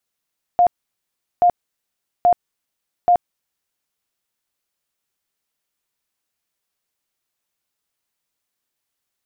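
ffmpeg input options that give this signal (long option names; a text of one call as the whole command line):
ffmpeg -f lavfi -i "aevalsrc='0.335*sin(2*PI*707*mod(t,0.83))*lt(mod(t,0.83),55/707)':duration=3.32:sample_rate=44100" out.wav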